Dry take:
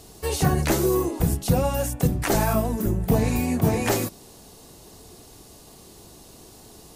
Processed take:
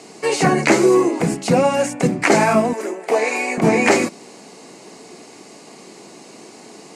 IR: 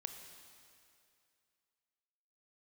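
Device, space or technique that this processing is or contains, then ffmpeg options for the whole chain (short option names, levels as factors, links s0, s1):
television speaker: -filter_complex "[0:a]highpass=f=190:w=0.5412,highpass=f=190:w=1.3066,equalizer=f=2200:t=q:w=4:g=9,equalizer=f=3500:t=q:w=4:g=-8,equalizer=f=5700:t=q:w=4:g=-4,lowpass=f=7700:w=0.5412,lowpass=f=7700:w=1.3066,asettb=1/sr,asplit=3[s0][s1][s2];[s0]atrim=end=2.734[s3];[s1]atrim=start=2.73:end=3.58,asetpts=PTS-STARTPTS,afade=t=in:d=0.004:c=qsin,afade=t=out:st=0.846:d=0.004:c=qsin,highpass=f=400:w=0.5412,highpass=f=400:w=1.3066[s4];[s2]atrim=start=3.576[s5];[s3][s4]acrossfade=d=0.004:c1=hsin:c2=qsin[s6];[s6][s5]acrossfade=d=0.004:c1=qsin:c2=hsin,volume=2.82"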